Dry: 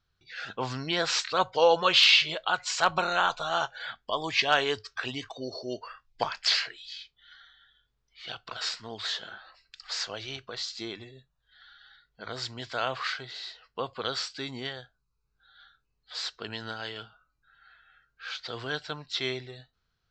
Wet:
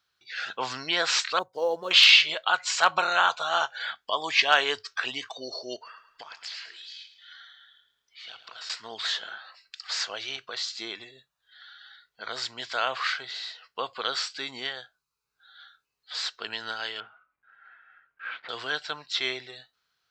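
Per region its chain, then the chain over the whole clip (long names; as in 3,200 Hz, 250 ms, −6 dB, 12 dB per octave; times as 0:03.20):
0:01.39–0:01.91: mu-law and A-law mismatch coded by A + drawn EQ curve 400 Hz 0 dB, 2,600 Hz −29 dB, 5,500 Hz −15 dB
0:05.76–0:08.70: downward compressor 3 to 1, threshold −48 dBFS + repeating echo 108 ms, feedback 41%, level −12 dB
0:17.00–0:18.49: one scale factor per block 3 bits + low-pass filter 2,200 Hz 24 dB per octave
whole clip: high-pass filter 1,100 Hz 6 dB per octave; dynamic equaliser 5,100 Hz, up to −4 dB, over −42 dBFS, Q 0.83; level +6.5 dB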